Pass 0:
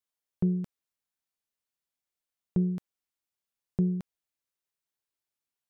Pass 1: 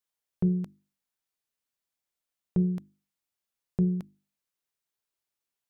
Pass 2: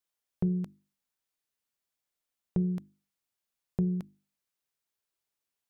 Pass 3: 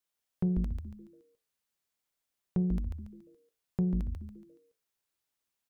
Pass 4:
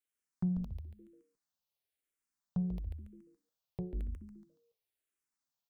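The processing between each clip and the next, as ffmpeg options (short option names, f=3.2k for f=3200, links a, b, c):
-af "bandreject=f=50:t=h:w=6,bandreject=f=100:t=h:w=6,bandreject=f=150:t=h:w=6,bandreject=f=200:t=h:w=6,bandreject=f=250:t=h:w=6,bandreject=f=300:t=h:w=6,bandreject=f=350:t=h:w=6,volume=1.5dB"
-af "acompressor=threshold=-26dB:ratio=2.5"
-filter_complex "[0:a]asplit=6[a][b][c][d][e][f];[b]adelay=141,afreqshift=-130,volume=-4dB[g];[c]adelay=282,afreqshift=-260,volume=-12.6dB[h];[d]adelay=423,afreqshift=-390,volume=-21.3dB[i];[e]adelay=564,afreqshift=-520,volume=-29.9dB[j];[f]adelay=705,afreqshift=-650,volume=-38.5dB[k];[a][g][h][i][j][k]amix=inputs=6:normalize=0,asoftclip=type=tanh:threshold=-18.5dB"
-filter_complex "[0:a]asplit=2[a][b];[b]afreqshift=-1[c];[a][c]amix=inputs=2:normalize=1,volume=-3dB"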